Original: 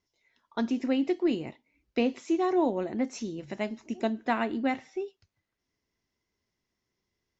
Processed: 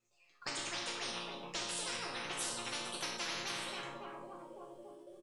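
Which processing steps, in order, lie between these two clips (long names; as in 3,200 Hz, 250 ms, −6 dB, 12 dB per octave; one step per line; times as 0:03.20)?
gliding playback speed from 122% → 161%
comb filter 5.5 ms, depth 59%
on a send: feedback echo with a low-pass in the loop 280 ms, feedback 62%, low-pass 930 Hz, level −8 dB
on the sum: noise gate −59 dBFS, range −10 dB
flanger 1.1 Hz, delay 7.9 ms, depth 2.7 ms, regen +80%
pitch vibrato 13 Hz 79 cents
mains-hum notches 50/100/150/200/250/300/350 Hz
resonators tuned to a chord A#2 minor, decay 0.52 s
every bin compressed towards the loudest bin 10 to 1
level +9 dB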